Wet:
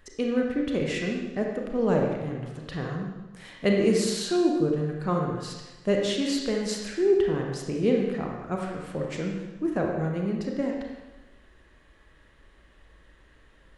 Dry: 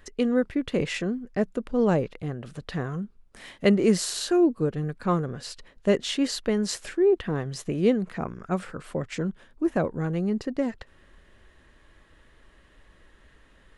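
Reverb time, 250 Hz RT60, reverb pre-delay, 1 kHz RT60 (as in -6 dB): 1.1 s, 1.1 s, 26 ms, 1.1 s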